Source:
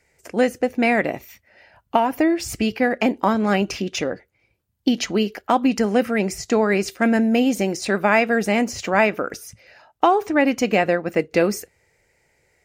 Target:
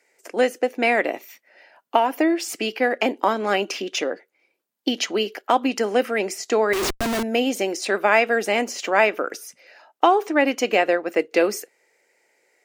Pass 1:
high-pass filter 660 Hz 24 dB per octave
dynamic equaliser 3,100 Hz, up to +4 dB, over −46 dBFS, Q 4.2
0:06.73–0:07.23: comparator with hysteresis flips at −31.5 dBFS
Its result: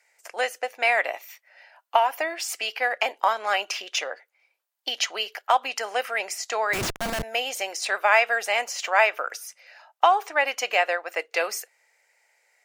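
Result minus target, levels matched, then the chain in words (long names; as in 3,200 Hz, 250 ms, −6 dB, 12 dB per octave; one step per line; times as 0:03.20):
250 Hz band −16.5 dB
high-pass filter 290 Hz 24 dB per octave
dynamic equaliser 3,100 Hz, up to +4 dB, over −46 dBFS, Q 4.2
0:06.73–0:07.23: comparator with hysteresis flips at −31.5 dBFS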